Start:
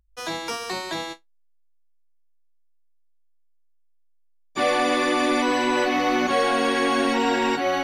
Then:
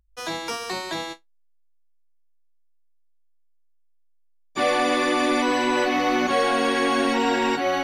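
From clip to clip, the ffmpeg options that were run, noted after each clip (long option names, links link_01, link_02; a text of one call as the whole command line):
ffmpeg -i in.wav -af anull out.wav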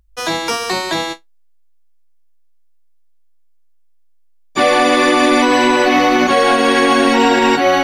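ffmpeg -i in.wav -af "alimiter=level_in=12.5dB:limit=-1dB:release=50:level=0:latency=1,volume=-2dB" out.wav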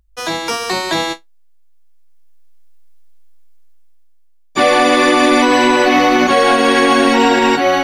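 ffmpeg -i in.wav -af "dynaudnorm=framelen=410:gausssize=5:maxgain=13.5dB,volume=-1.5dB" out.wav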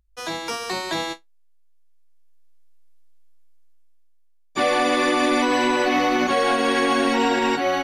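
ffmpeg -i in.wav -af "aresample=32000,aresample=44100,volume=-8.5dB" out.wav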